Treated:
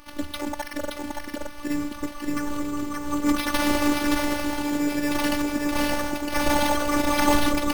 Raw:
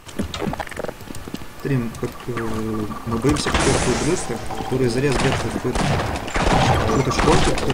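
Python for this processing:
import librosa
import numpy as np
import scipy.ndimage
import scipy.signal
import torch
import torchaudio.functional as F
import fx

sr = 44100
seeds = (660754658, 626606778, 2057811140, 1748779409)

p1 = x + fx.echo_single(x, sr, ms=572, db=-3.5, dry=0)
p2 = np.repeat(p1[::6], 6)[:len(p1)]
p3 = fx.robotise(p2, sr, hz=292.0)
y = p3 * 10.0 ** (-2.5 / 20.0)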